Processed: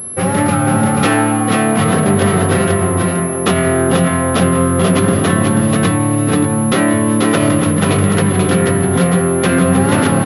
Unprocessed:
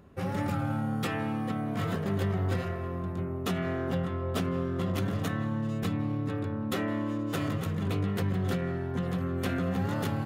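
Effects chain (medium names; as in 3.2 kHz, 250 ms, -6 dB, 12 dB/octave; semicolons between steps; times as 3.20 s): tracing distortion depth 0.12 ms; high-pass 99 Hz; bass shelf 160 Hz -4.5 dB; on a send: delay 486 ms -3.5 dB; on the sum: loudness maximiser +19.5 dB; class-D stage that switches slowly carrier 11 kHz; trim -1 dB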